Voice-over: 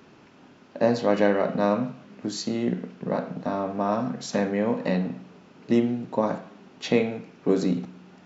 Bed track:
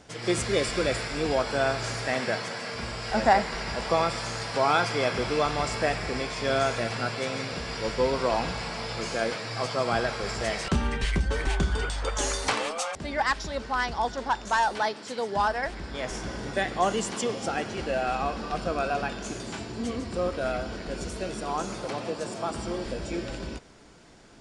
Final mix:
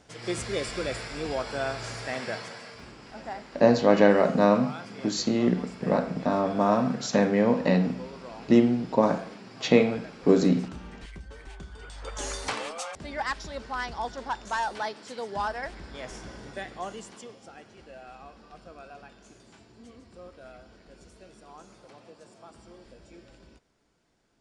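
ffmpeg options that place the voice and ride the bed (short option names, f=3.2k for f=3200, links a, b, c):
-filter_complex "[0:a]adelay=2800,volume=2.5dB[a];[1:a]volume=7.5dB,afade=t=out:st=2.37:d=0.58:silence=0.237137,afade=t=in:st=11.78:d=0.55:silence=0.237137,afade=t=out:st=15.67:d=1.74:silence=0.211349[b];[a][b]amix=inputs=2:normalize=0"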